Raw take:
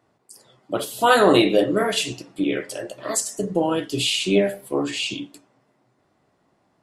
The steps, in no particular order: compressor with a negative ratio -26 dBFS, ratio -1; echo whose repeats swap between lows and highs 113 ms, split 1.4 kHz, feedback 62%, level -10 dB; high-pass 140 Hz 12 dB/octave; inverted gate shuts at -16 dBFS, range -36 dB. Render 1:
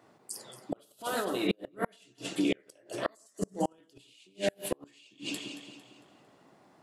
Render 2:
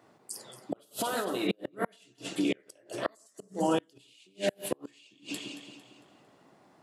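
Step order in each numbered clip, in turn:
high-pass > compressor with a negative ratio > echo whose repeats swap between lows and highs > inverted gate; compressor with a negative ratio > echo whose repeats swap between lows and highs > inverted gate > high-pass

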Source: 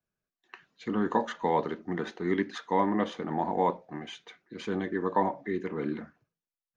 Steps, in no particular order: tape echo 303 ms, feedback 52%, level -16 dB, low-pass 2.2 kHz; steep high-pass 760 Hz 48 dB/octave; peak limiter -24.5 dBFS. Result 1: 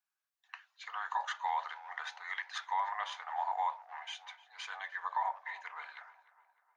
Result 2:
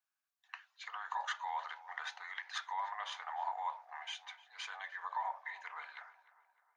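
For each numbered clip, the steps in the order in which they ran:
tape echo > steep high-pass > peak limiter; peak limiter > tape echo > steep high-pass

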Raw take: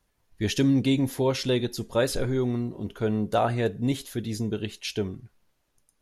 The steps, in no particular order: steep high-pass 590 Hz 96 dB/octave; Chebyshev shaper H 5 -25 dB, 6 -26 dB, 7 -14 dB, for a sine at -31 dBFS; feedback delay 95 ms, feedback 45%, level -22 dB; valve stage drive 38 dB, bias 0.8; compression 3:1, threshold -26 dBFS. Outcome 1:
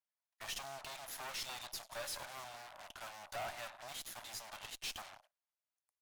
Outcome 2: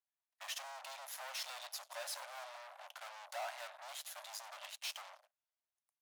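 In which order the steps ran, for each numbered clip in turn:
compression > feedback delay > Chebyshev shaper > steep high-pass > valve stage; compression > feedback delay > Chebyshev shaper > valve stage > steep high-pass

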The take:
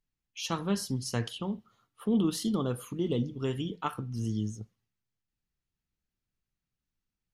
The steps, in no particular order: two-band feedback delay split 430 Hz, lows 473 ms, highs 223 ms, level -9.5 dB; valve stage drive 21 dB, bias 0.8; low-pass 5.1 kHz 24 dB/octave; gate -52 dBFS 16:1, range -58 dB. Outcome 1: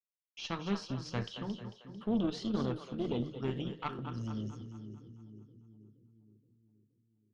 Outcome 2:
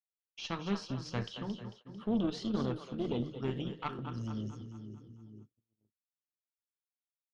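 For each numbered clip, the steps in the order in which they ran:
gate > two-band feedback delay > valve stage > low-pass; two-band feedback delay > valve stage > gate > low-pass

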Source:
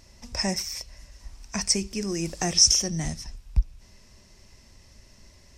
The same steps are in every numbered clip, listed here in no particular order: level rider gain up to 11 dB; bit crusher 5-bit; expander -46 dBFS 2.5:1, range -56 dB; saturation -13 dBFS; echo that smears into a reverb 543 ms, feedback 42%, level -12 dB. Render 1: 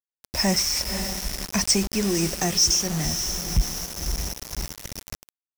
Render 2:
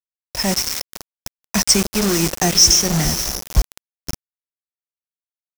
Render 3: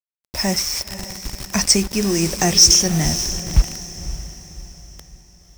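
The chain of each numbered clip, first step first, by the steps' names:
echo that smears into a reverb > level rider > expander > bit crusher > saturation; saturation > echo that smears into a reverb > bit crusher > expander > level rider; saturation > level rider > bit crusher > expander > echo that smears into a reverb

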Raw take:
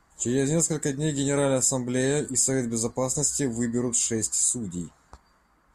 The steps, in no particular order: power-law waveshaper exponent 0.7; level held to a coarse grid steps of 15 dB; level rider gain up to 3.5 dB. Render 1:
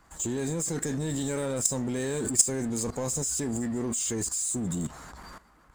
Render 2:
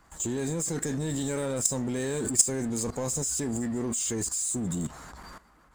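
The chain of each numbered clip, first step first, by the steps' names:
level rider > power-law waveshaper > level held to a coarse grid; power-law waveshaper > level rider > level held to a coarse grid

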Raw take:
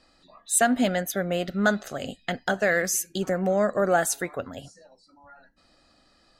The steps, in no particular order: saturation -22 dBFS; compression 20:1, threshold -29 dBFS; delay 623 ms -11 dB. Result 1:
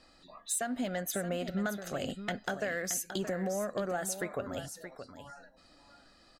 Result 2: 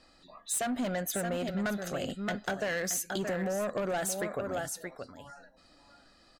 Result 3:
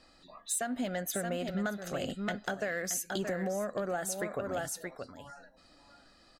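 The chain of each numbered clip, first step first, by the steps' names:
compression > delay > saturation; delay > saturation > compression; delay > compression > saturation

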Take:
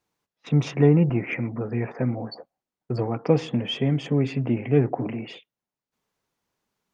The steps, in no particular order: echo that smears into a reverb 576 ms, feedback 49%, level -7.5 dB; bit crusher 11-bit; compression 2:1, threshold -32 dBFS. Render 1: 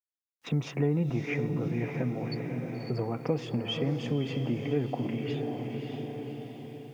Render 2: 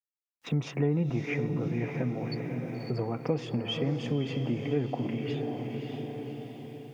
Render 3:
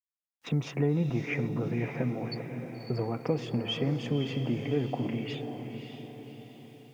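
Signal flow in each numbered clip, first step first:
echo that smears into a reverb > compression > bit crusher; echo that smears into a reverb > bit crusher > compression; compression > echo that smears into a reverb > bit crusher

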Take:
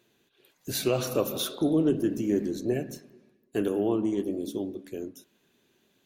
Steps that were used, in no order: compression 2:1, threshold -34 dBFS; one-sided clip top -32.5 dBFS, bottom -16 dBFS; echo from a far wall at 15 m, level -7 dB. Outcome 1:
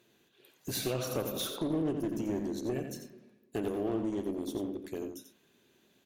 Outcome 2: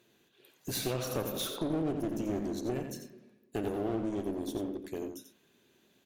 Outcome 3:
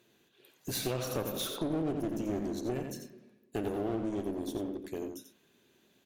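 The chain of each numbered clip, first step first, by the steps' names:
compression > one-sided clip > echo from a far wall; one-sided clip > compression > echo from a far wall; one-sided clip > echo from a far wall > compression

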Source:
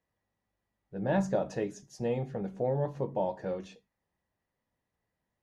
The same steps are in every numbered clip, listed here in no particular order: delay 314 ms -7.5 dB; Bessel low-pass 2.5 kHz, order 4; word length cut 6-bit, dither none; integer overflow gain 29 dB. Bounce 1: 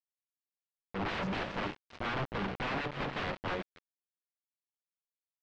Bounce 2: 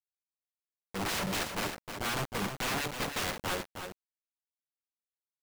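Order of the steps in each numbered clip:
integer overflow > delay > word length cut > Bessel low-pass; Bessel low-pass > integer overflow > word length cut > delay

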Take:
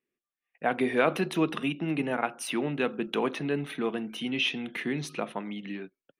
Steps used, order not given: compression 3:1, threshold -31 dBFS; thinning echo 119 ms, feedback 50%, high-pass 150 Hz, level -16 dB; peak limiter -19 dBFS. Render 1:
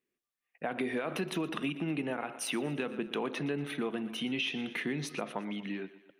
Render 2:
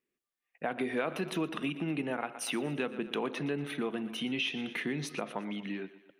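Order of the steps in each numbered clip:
peak limiter > thinning echo > compression; thinning echo > compression > peak limiter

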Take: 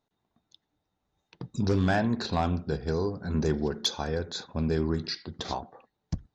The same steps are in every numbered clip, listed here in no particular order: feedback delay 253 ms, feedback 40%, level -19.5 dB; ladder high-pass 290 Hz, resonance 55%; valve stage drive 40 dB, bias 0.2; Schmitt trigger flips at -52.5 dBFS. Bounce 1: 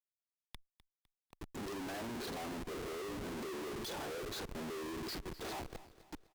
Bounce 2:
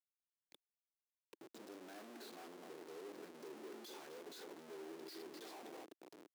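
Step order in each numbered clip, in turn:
ladder high-pass > Schmitt trigger > feedback delay > valve stage; feedback delay > valve stage > Schmitt trigger > ladder high-pass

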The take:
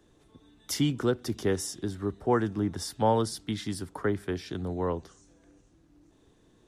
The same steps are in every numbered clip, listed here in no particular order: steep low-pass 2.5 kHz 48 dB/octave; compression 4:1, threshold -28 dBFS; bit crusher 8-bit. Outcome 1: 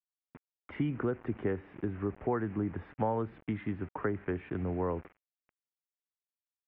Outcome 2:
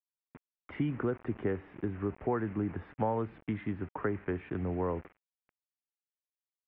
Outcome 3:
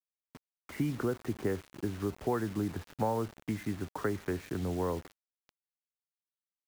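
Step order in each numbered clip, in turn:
bit crusher > compression > steep low-pass; compression > bit crusher > steep low-pass; compression > steep low-pass > bit crusher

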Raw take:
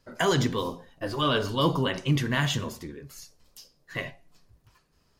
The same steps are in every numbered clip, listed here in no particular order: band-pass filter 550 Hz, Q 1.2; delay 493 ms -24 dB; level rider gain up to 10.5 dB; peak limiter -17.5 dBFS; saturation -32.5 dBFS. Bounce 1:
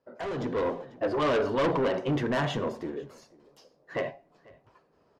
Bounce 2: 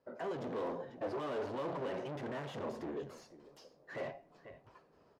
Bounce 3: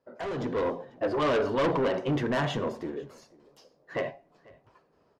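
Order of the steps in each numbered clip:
band-pass filter > peak limiter > saturation > delay > level rider; peak limiter > level rider > delay > saturation > band-pass filter; band-pass filter > peak limiter > saturation > level rider > delay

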